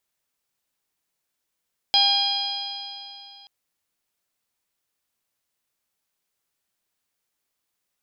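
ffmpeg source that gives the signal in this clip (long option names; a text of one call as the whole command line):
ffmpeg -f lavfi -i "aevalsrc='0.0794*pow(10,-3*t/2.86)*sin(2*PI*800.76*t)+0.0112*pow(10,-3*t/2.86)*sin(2*PI*1606.07*t)+0.0251*pow(10,-3*t/2.86)*sin(2*PI*2420.43*t)+0.133*pow(10,-3*t/2.86)*sin(2*PI*3248.28*t)+0.0794*pow(10,-3*t/2.86)*sin(2*PI*4093.9*t)+0.112*pow(10,-3*t/2.86)*sin(2*PI*4961.44*t)':duration=1.53:sample_rate=44100" out.wav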